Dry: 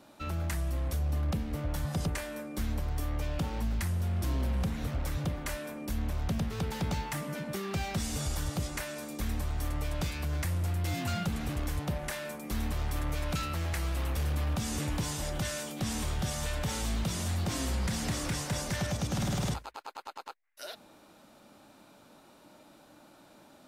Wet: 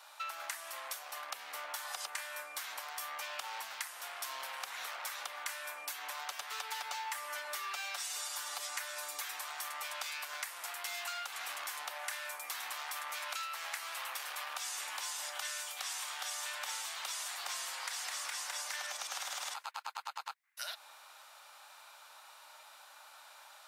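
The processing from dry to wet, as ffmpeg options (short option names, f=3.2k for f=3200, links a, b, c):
-filter_complex "[0:a]asettb=1/sr,asplit=3[a][b][c];[a]atrim=end=5.864[d];[b]atrim=start=5.86:end=9.37,asetpts=PTS-STARTPTS,afade=t=in:d=0.004:c=qsin,afade=t=out:st=3.506:d=0.004:c=qsin,aecho=1:1:6.9:0.65,atrim=end_sample=154791[e];[c]atrim=start=9.366[f];[d][e]acrossfade=d=0.004:c1=hsin:c2=qsin[g];[g][f]acrossfade=d=0.004:c1=qsin:c2=hsin,asettb=1/sr,asplit=3[h][i][j];[h]atrim=end=15.484[k];[i]atrim=start=15.48:end=16.2,asetpts=PTS-STARTPTS,afade=t=in:d=0.004:c=qsin,afade=t=out:st=0.716:d=0.004:c=qsin,highpass=f=370:p=1[l];[j]atrim=start=16.196[m];[k][l]acrossfade=d=0.004:c1=hsin:c2=qsin[n];[n][m]acrossfade=d=0.004:c1=qsin:c2=hsin,highpass=f=890:w=0.5412,highpass=f=890:w=1.3066,acompressor=threshold=-44dB:ratio=6,volume=6.5dB"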